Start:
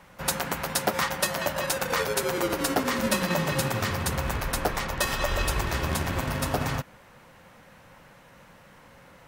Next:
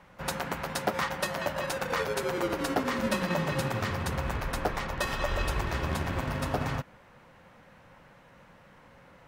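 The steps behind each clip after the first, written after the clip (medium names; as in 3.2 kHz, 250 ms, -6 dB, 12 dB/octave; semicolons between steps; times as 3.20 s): treble shelf 5.3 kHz -11 dB; trim -2.5 dB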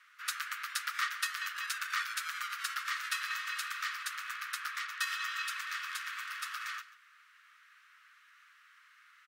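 Chebyshev high-pass 1.2 kHz, order 6; delay 139 ms -17.5 dB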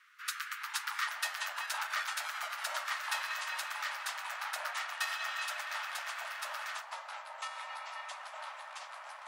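ever faster or slower copies 342 ms, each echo -6 st, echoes 2, each echo -6 dB; trim -1.5 dB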